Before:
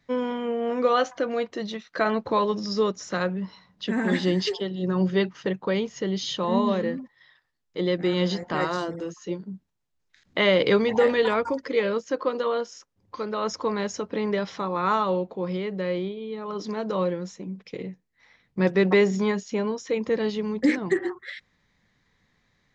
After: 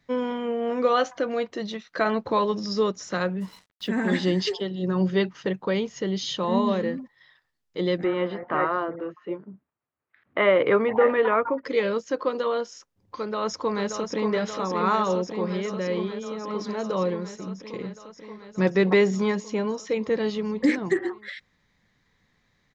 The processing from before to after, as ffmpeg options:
-filter_complex "[0:a]asplit=3[a][b][c];[a]afade=t=out:st=3.4:d=0.02[d];[b]acrusher=bits=7:mix=0:aa=0.5,afade=t=in:st=3.4:d=0.02,afade=t=out:st=3.87:d=0.02[e];[c]afade=t=in:st=3.87:d=0.02[f];[d][e][f]amix=inputs=3:normalize=0,asettb=1/sr,asplit=3[g][h][i];[g]atrim=end=8.044[j];[h]atrim=start=8.04:end=11.65,asetpts=PTS-STARTPTS,afade=t=in:d=0.004:c=qsin,afade=t=out:st=3.606:d=0.004:c=qsin,highpass=120,equalizer=f=180:t=q:w=4:g=-9,equalizer=f=630:t=q:w=4:g=3,equalizer=f=1.2k:t=q:w=4:g=7,lowpass=f=2.4k:w=0.5412,lowpass=f=2.4k:w=1.3066[k];[i]atrim=start=11.646[l];[j][k]acrossfade=d=0.004:c1=hsin:c2=qsin[m];[m][l]acrossfade=d=0.004:c1=qsin:c2=hsin,asplit=2[n][o];[o]afade=t=in:st=13.16:d=0.01,afade=t=out:st=14.32:d=0.01,aecho=0:1:580|1160|1740|2320|2900|3480|4060|4640|5220|5800|6380|6960:0.530884|0.424708|0.339766|0.271813|0.21745|0.17396|0.139168|0.111335|0.0890676|0.0712541|0.0570033|0.0456026[p];[n][p]amix=inputs=2:normalize=0"

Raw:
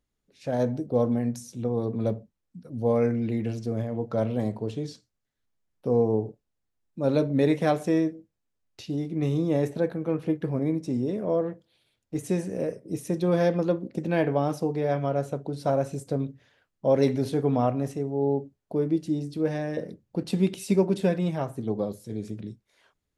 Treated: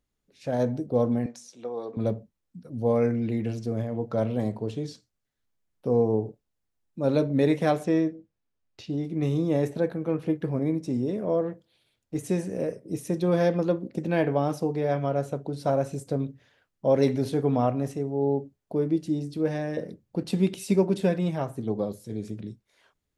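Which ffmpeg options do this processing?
-filter_complex "[0:a]asettb=1/sr,asplit=3[a][b][c];[a]atrim=end=1.264[d];[b]atrim=start=1.26:end=1.97,asetpts=PTS-STARTPTS,afade=t=in:d=0.004:c=qsin,afade=t=out:st=0.706:d=0.004:c=qsin,highpass=520,lowpass=6.7k[e];[c]atrim=start=1.966[f];[d][e]acrossfade=d=0.004:c1=hsin:c2=qsin[g];[g][f]acrossfade=d=0.004:c1=qsin:c2=hsin,asettb=1/sr,asplit=3[h][i][j];[h]atrim=end=7.844[k];[i]atrim=start=7.84:end=9.04,asetpts=PTS-STARTPTS,afade=t=in:d=0.004:c=qsin,afade=t=out:st=1.196:d=0.004:c=qsin,adynamicsmooth=sensitivity=3.5:basefreq=6.4k[l];[j]atrim=start=9.036[m];[k][l]acrossfade=d=0.004:c1=hsin:c2=qsin[n];[n][m]acrossfade=d=0.004:c1=qsin:c2=hsin"

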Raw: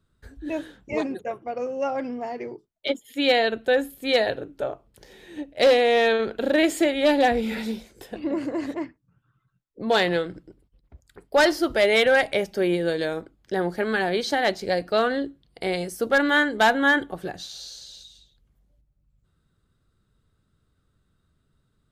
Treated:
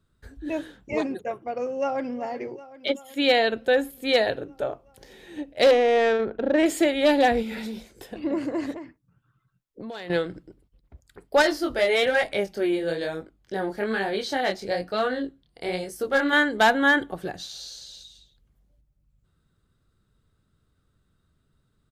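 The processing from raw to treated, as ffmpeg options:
-filter_complex "[0:a]asplit=2[a][b];[b]afade=t=in:st=1.69:d=0.01,afade=t=out:st=2.12:d=0.01,aecho=0:1:380|760|1140|1520|1900|2280|2660|3040|3420|3800:0.158489|0.118867|0.0891502|0.0668627|0.050147|0.0376103|0.0282077|0.0211558|0.0158668|0.0119001[c];[a][c]amix=inputs=2:normalize=0,asettb=1/sr,asplit=3[d][e][f];[d]atrim=end=5.714[g];[e]atrim=start=5.71:end=6.66,asetpts=PTS-STARTPTS,afade=t=in:d=0.004:c=qsin,afade=t=out:st=0.946:d=0.004:c=qsin,adynamicsmooth=sensitivity=0.5:basefreq=1.4k[h];[f]atrim=start=6.656[i];[g][h]acrossfade=d=0.004:c1=hsin:c2=qsin[j];[j][i]acrossfade=d=0.004:c1=qsin:c2=hsin,asettb=1/sr,asplit=3[k][l][m];[k]atrim=end=7.424[n];[l]atrim=start=7.42:end=8.24,asetpts=PTS-STARTPTS,afade=t=in:d=0.004:c=qsin,afade=t=out:st=0.816:d=0.004:c=qsin,acompressor=threshold=-29dB:ratio=6:attack=3.2:release=140:knee=1:detection=peak[o];[m]atrim=start=8.236[p];[n][o]acrossfade=d=0.004:c1=hsin:c2=qsin[q];[q][p]acrossfade=d=0.004:c1=qsin:c2=hsin,asettb=1/sr,asplit=3[r][s][t];[r]atrim=end=8.764[u];[s]atrim=start=8.76:end=10.1,asetpts=PTS-STARTPTS,afade=t=in:d=0.004:c=qsin,afade=t=out:st=1.336:d=0.004:c=qsin,acompressor=threshold=-33dB:ratio=12:attack=3.2:release=140:knee=1:detection=peak[v];[t]atrim=start=10.096[w];[u][v]acrossfade=d=0.004:c1=hsin:c2=qsin[x];[x][w]acrossfade=d=0.004:c1=qsin:c2=hsin,asettb=1/sr,asplit=3[y][z][aa];[y]atrim=end=11.424[ab];[z]atrim=start=11.42:end=16.33,asetpts=PTS-STARTPTS,afade=t=in:d=0.004:c=qsin,afade=t=out:st=4.906:d=0.004:c=qsin,flanger=delay=19:depth=7.2:speed=1.1[ac];[aa]atrim=start=16.326[ad];[ab][ac]acrossfade=d=0.004:c1=hsin:c2=qsin[ae];[ae][ad]acrossfade=d=0.004:c1=qsin:c2=hsin"

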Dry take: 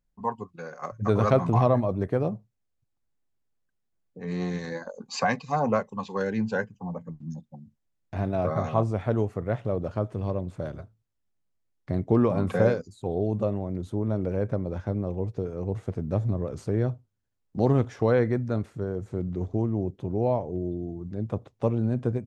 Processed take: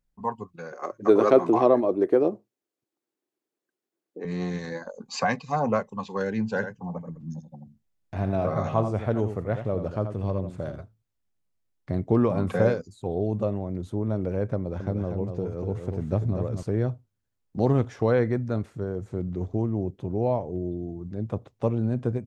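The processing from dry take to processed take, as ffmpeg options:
-filter_complex "[0:a]asettb=1/sr,asplit=3[a][b][c];[a]atrim=end=0.724[d];[b]atrim=start=0.72:end=4.25,asetpts=PTS-STARTPTS,afade=t=in:d=0.004:c=qsin,afade=t=out:st=3.526:d=0.004:c=qsin,highpass=f=340:t=q:w=4.1[e];[c]atrim=start=4.246[f];[d][e]acrossfade=d=0.004:c1=hsin:c2=qsin[g];[g][f]acrossfade=d=0.004:c1=qsin:c2=hsin,asettb=1/sr,asplit=3[h][i][j];[h]atrim=end=6.484[k];[i]atrim=start=6.48:end=10.76,asetpts=PTS-STARTPTS,afade=t=in:d=0.004:c=qsin,afade=t=out:st=4.276:d=0.004:c=qsin,aecho=1:1:83:0.355,atrim=end_sample=188748[l];[j]atrim=start=10.756[m];[k][l]acrossfade=d=0.004:c1=hsin:c2=qsin[n];[n][m]acrossfade=d=0.004:c1=qsin:c2=hsin,asettb=1/sr,asplit=3[o][p][q];[o]atrim=end=14.564[r];[p]atrim=start=14.56:end=16.63,asetpts=PTS-STARTPTS,afade=t=in:d=0.004:c=qsin,afade=t=out:st=2.066:d=0.004:c=qsin,aecho=1:1:242:0.501,atrim=end_sample=91287[s];[q]atrim=start=16.626[t];[r][s]acrossfade=d=0.004:c1=hsin:c2=qsin[u];[u][t]acrossfade=d=0.004:c1=qsin:c2=hsin"

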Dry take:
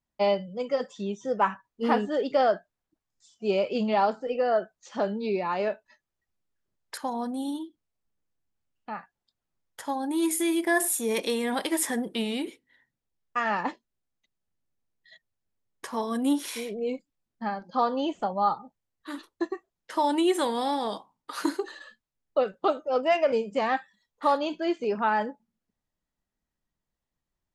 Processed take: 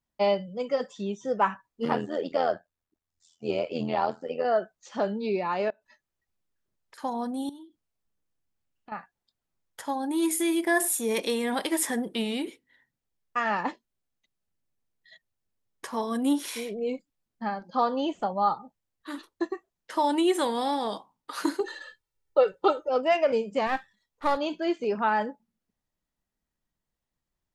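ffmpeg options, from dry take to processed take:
-filter_complex "[0:a]asettb=1/sr,asplit=3[a][b][c];[a]atrim=end=1.854[d];[b]atrim=start=1.85:end=4.45,asetpts=PTS-STARTPTS,afade=t=in:d=0.004:c=qsin,afade=t=out:st=2.596:d=0.004:c=qsin,tremolo=f=83:d=0.824[e];[c]atrim=start=4.446[f];[d][e]acrossfade=d=0.004:c1=hsin:c2=qsin[g];[g][f]acrossfade=d=0.004:c1=qsin:c2=hsin,asettb=1/sr,asplit=3[h][i][j];[h]atrim=end=5.704[k];[i]atrim=start=5.7:end=6.98,asetpts=PTS-STARTPTS,afade=t=in:d=0.004:c=qsin,afade=t=out:st=1.276:d=0.004:c=qsin,acompressor=threshold=-50dB:ratio=10:attack=3.2:release=140:knee=1:detection=peak[l];[j]atrim=start=6.976[m];[k][l]acrossfade=d=0.004:c1=hsin:c2=qsin[n];[n][m]acrossfade=d=0.004:c1=qsin:c2=hsin,asettb=1/sr,asplit=3[o][p][q];[o]atrim=end=7.494[r];[p]atrim=start=7.49:end=8.92,asetpts=PTS-STARTPTS,afade=t=in:d=0.004:c=qsin,afade=t=out:st=1.426:d=0.004:c=qsin,acompressor=threshold=-47dB:ratio=3:attack=3.2:release=140:knee=1:detection=peak[s];[q]atrim=start=8.916[t];[r][s]acrossfade=d=0.004:c1=hsin:c2=qsin[u];[u][t]acrossfade=d=0.004:c1=qsin:c2=hsin,asettb=1/sr,asplit=3[v][w][x];[v]atrim=end=21.604[y];[w]atrim=start=21.6:end=22.89,asetpts=PTS-STARTPTS,afade=t=in:d=0.004:c=qsin,afade=t=out:st=1.286:d=0.004:c=qsin,aecho=1:1:2.2:0.88,atrim=end_sample=56889[z];[x]atrim=start=22.886[aa];[y][z]acrossfade=d=0.004:c1=hsin:c2=qsin[ab];[ab][aa]acrossfade=d=0.004:c1=qsin:c2=hsin,asettb=1/sr,asplit=3[ac][ad][ae];[ac]atrim=end=23.674[af];[ad]atrim=start=23.67:end=24.37,asetpts=PTS-STARTPTS,afade=t=in:d=0.004:c=qsin,afade=t=out:st=0.696:d=0.004:c=qsin,aeval=exprs='if(lt(val(0),0),0.447*val(0),val(0))':c=same[ag];[ae]atrim=start=24.366[ah];[af][ag]acrossfade=d=0.004:c1=hsin:c2=qsin[ai];[ai][ah]acrossfade=d=0.004:c1=qsin:c2=hsin"

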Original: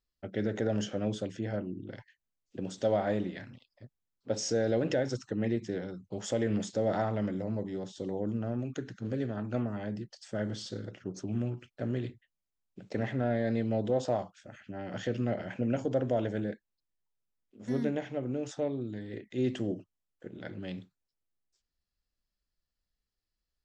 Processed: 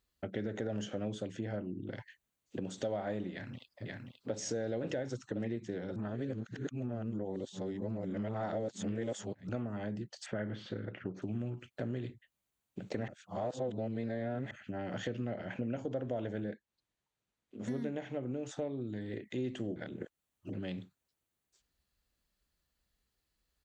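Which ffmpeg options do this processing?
-filter_complex "[0:a]asplit=2[a][b];[b]afade=t=in:st=3.32:d=0.01,afade=t=out:st=4.37:d=0.01,aecho=0:1:530|1060|1590|2120|2650|3180|3710|4240|4770:0.473151|0.307548|0.199906|0.129939|0.0844605|0.0548993|0.0356845|0.023195|0.0150767[c];[a][c]amix=inputs=2:normalize=0,asettb=1/sr,asplit=3[d][e][f];[d]atrim=end=10.264[g];[e]atrim=start=10.26:end=11.22,asetpts=PTS-STARTPTS,afade=t=in:d=0.004:c=qsin,afade=t=out:st=0.956:d=0.004:c=qsin,lowpass=f=2.2k:t=q:w=1.6[h];[f]atrim=start=11.216[i];[g][h]acrossfade=d=0.004:c1=hsin:c2=qsin[j];[j][i]acrossfade=d=0.004:c1=qsin:c2=hsin,asettb=1/sr,asplit=3[k][l][m];[k]atrim=end=15.084[n];[l]atrim=start=15.08:end=17.64,asetpts=PTS-STARTPTS,afade=t=in:d=0.004:c=qsin,afade=t=out:st=2.556:d=0.004:c=qsin,lowpass=6.7k[o];[m]atrim=start=17.636[p];[n][o]acrossfade=d=0.004:c1=hsin:c2=qsin[q];[q][p]acrossfade=d=0.004:c1=qsin:c2=hsin,asplit=7[r][s][t][u][v][w][x];[r]atrim=end=5.962[y];[s]atrim=start=5.958:end=9.492,asetpts=PTS-STARTPTS,areverse[z];[t]atrim=start=9.488:end=13.082[aa];[u]atrim=start=13.078:end=14.512,asetpts=PTS-STARTPTS,areverse[ab];[v]atrim=start=14.508:end=19.762[ac];[w]atrim=start=19.758:end=20.532,asetpts=PTS-STARTPTS,areverse[ad];[x]atrim=start=20.528[ae];[y][z]acrossfade=d=0.004:c1=hsin:c2=hsin[af];[af][aa]acrossfade=d=0.004:c1=hsin:c2=hsin[ag];[ag][ab]acrossfade=d=0.004:c1=hsin:c2=hsin[ah];[ah][ac]acrossfade=d=0.004:c1=hsin:c2=hsin[ai];[ai][ad]acrossfade=d=0.004:c1=hsin:c2=hsin[aj];[aj][ae]acrossfade=d=0.004:c1=hsin:c2=hsin,highpass=42,equalizer=f=5.2k:w=5.9:g=-8,acompressor=threshold=-47dB:ratio=3,volume=8dB"

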